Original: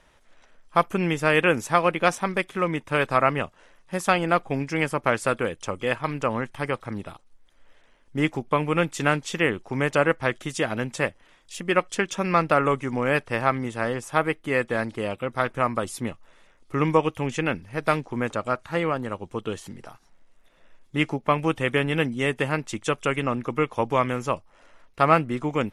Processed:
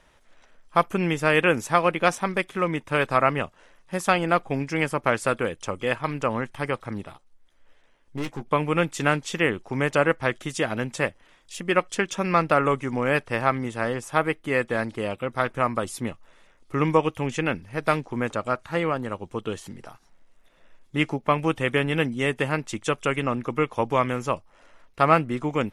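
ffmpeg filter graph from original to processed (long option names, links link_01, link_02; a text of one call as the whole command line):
ffmpeg -i in.wav -filter_complex "[0:a]asettb=1/sr,asplit=3[link_01][link_02][link_03];[link_01]atrim=end=7.064[link_04];[link_02]atrim=start=7.06:end=8.46,asetpts=PTS-STARTPTS,afade=type=in:duration=0.004:curve=qsin,afade=type=out:start_time=1.396:duration=0.004:curve=qsin,aeval=exprs='(tanh(25.1*val(0)+0.7)-tanh(0.7))/25.1':channel_layout=same,asplit=2[link_05][link_06];[link_06]adelay=14,volume=-9dB[link_07];[link_05][link_07]amix=inputs=2:normalize=0,atrim=end_sample=61740[link_08];[link_03]atrim=start=8.456[link_09];[link_04][link_08]acrossfade=duration=0.004:curve1=hsin:curve2=qsin[link_10];[link_10][link_09]acrossfade=duration=0.004:curve1=qsin:curve2=hsin" out.wav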